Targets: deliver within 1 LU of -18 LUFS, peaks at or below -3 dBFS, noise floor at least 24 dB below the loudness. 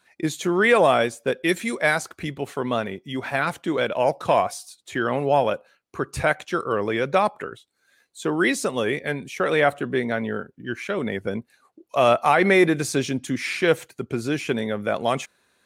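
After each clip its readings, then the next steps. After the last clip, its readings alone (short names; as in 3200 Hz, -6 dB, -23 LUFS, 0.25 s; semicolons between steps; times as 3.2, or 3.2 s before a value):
loudness -23.0 LUFS; peak -6.0 dBFS; loudness target -18.0 LUFS
-> gain +5 dB; limiter -3 dBFS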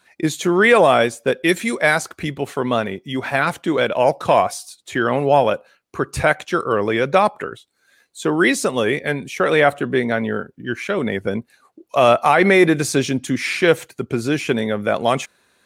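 loudness -18.5 LUFS; peak -3.0 dBFS; noise floor -61 dBFS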